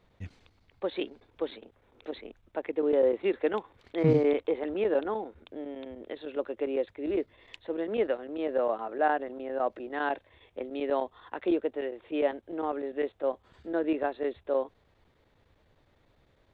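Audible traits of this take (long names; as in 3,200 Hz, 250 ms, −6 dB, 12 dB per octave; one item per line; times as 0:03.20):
chopped level 9.9 Hz, depth 60%, duty 90%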